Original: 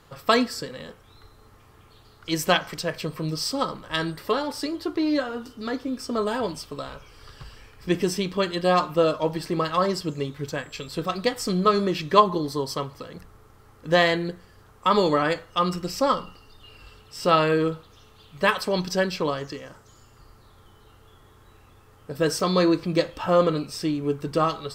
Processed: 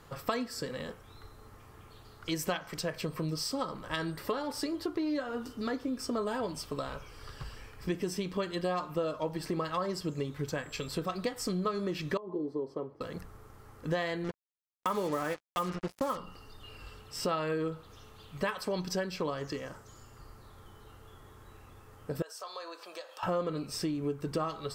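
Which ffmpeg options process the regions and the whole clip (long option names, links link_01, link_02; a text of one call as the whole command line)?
ffmpeg -i in.wav -filter_complex "[0:a]asettb=1/sr,asplit=3[link_01][link_02][link_03];[link_01]atrim=end=12.174[link_04];[link_02]atrim=start=12.17:end=13.01,asetpts=PTS-STARTPTS,afade=type=in:duration=0.004:curve=qsin,afade=type=out:start_time=0.836:duration=0.004:curve=qsin,acompressor=threshold=-21dB:ratio=8:attack=3.2:release=140:knee=1:detection=peak,bandpass=frequency=370:width_type=q:width=1.9[link_05];[link_03]atrim=start=13.006[link_06];[link_04][link_05]acrossfade=duration=0.004:curve1=hsin:curve2=qsin[link_07];[link_07][link_06]acrossfade=duration=0.004:curve1=qsin:curve2=hsin,asettb=1/sr,asplit=3[link_08][link_09][link_10];[link_08]atrim=end=14.244[link_11];[link_09]atrim=start=14.24:end=16.17,asetpts=PTS-STARTPTS,afade=type=in:duration=0.004:curve=qsin,afade=type=out:start_time=1.926:duration=0.004:curve=qsin,highpass=100,lowpass=3100,acrusher=bits=4:mix=0:aa=0.5[link_12];[link_10]atrim=start=16.166[link_13];[link_11][link_12]acrossfade=duration=0.004:curve1=hsin:curve2=qsin[link_14];[link_14][link_13]acrossfade=duration=0.004:curve1=qsin:curve2=hsin,asettb=1/sr,asplit=3[link_15][link_16][link_17];[link_15]atrim=end=22.224[link_18];[link_16]atrim=start=22.22:end=23.23,asetpts=PTS-STARTPTS,afade=type=in:duration=0.004:curve=qsin,afade=type=out:start_time=1.006:duration=0.004:curve=qsin,highpass=frequency=620:width=0.5412,highpass=frequency=620:width=1.3066,equalizer=frequency=2100:width_type=o:width=0.31:gain=-9.5,acompressor=threshold=-43dB:ratio=3:attack=3.2:release=140:knee=1:detection=peak[link_19];[link_17]atrim=start=23.226[link_20];[link_18][link_19]acrossfade=duration=0.004:curve1=hsin:curve2=qsin[link_21];[link_21][link_20]acrossfade=duration=0.004:curve1=qsin:curve2=hsin,acompressor=threshold=-31dB:ratio=4,equalizer=frequency=3700:width=1.2:gain=-3.5" out.wav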